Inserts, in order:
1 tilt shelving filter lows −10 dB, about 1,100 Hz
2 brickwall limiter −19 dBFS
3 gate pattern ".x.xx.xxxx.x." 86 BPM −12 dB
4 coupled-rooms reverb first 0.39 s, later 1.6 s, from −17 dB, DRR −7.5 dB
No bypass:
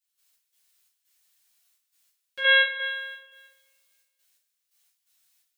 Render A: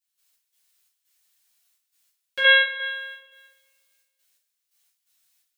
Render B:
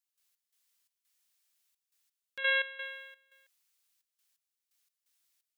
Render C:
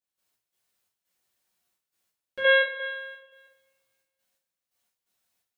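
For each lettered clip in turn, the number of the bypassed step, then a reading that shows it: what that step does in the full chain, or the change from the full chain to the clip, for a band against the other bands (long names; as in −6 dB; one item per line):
2, change in momentary loudness spread +5 LU
4, change in momentary loudness spread +3 LU
1, change in momentary loudness spread +2 LU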